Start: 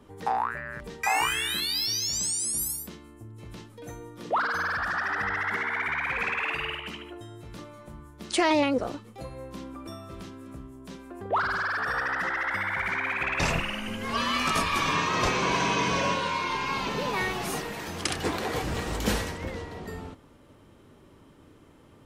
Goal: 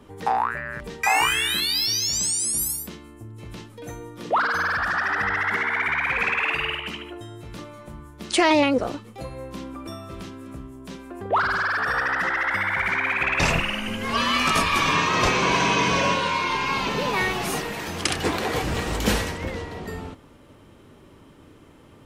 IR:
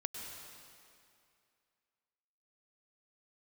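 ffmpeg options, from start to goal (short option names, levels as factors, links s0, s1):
-af "equalizer=f=2600:t=o:w=0.77:g=2,volume=1.68"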